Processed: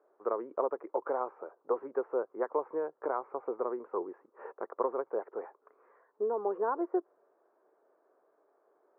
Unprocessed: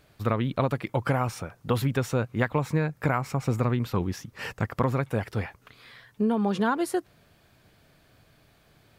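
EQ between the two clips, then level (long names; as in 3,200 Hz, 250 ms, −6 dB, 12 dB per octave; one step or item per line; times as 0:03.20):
Chebyshev high-pass filter 380 Hz, order 4
inverse Chebyshev low-pass filter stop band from 3,500 Hz, stop band 60 dB
parametric band 740 Hz −5 dB 0.63 octaves
0.0 dB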